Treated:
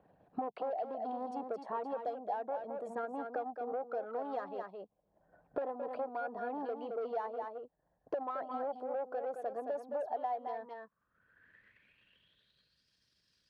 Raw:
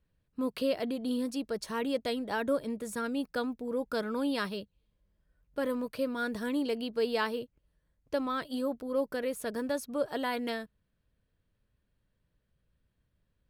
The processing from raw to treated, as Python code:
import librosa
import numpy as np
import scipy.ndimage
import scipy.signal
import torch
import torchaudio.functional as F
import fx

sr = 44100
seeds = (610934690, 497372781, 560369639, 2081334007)

p1 = fx.envelope_sharpen(x, sr, power=1.5)
p2 = fx.highpass(p1, sr, hz=180.0, slope=24, at=(3.72, 4.39))
p3 = fx.comb(p2, sr, ms=6.9, depth=0.37, at=(5.61, 6.27))
p4 = fx.level_steps(p3, sr, step_db=11)
p5 = p3 + (p4 * librosa.db_to_amplitude(1.0))
p6 = 10.0 ** (-26.0 / 20.0) * np.tanh(p5 / 10.0 ** (-26.0 / 20.0))
p7 = p6 + fx.echo_single(p6, sr, ms=217, db=-8.0, dry=0)
p8 = fx.filter_sweep_bandpass(p7, sr, from_hz=750.0, to_hz=5100.0, start_s=10.43, end_s=12.85, q=7.8)
p9 = fx.band_squash(p8, sr, depth_pct=100)
y = p9 * librosa.db_to_amplitude(7.5)